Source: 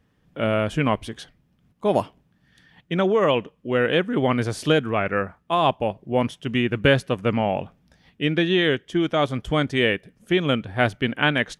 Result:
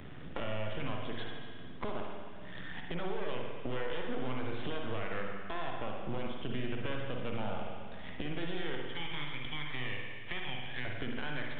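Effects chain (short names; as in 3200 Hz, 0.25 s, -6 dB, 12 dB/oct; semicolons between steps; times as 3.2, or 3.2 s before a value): 8.86–10.85 steep high-pass 1700 Hz 72 dB/oct; compressor, threshold -34 dBFS, peak gain reduction 20 dB; limiter -29.5 dBFS, peak gain reduction 10.5 dB; half-wave rectifier; spring tank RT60 1.2 s, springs 47/55 ms, chirp 30 ms, DRR 0.5 dB; downsampling 8000 Hz; three-band squash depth 70%; gain +2.5 dB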